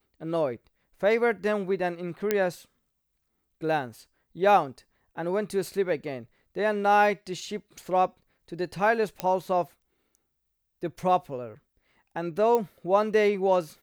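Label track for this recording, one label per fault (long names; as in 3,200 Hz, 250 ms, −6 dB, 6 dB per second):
2.310000	2.310000	click −10 dBFS
9.200000	9.200000	click −12 dBFS
12.550000	12.550000	click −14 dBFS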